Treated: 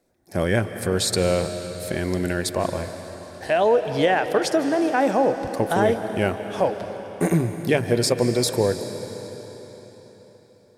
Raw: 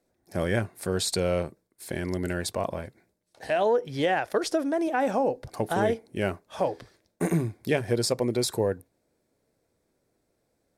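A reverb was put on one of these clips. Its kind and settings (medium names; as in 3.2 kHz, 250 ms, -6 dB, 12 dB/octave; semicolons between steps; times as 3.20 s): algorithmic reverb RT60 4.3 s, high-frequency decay 0.95×, pre-delay 120 ms, DRR 8.5 dB; trim +5 dB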